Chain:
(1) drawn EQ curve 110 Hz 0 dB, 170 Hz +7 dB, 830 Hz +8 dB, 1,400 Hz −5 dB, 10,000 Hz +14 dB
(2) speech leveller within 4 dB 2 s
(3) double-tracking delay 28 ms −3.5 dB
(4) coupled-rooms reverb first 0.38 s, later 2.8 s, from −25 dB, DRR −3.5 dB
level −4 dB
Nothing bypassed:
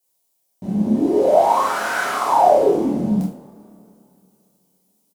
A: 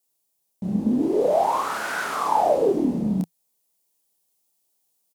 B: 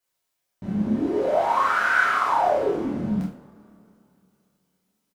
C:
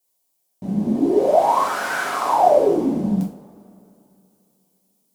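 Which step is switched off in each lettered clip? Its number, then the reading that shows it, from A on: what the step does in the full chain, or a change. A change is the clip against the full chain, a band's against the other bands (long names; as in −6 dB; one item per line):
4, change in momentary loudness spread −1 LU
1, 2 kHz band +9.0 dB
3, change in integrated loudness −1.5 LU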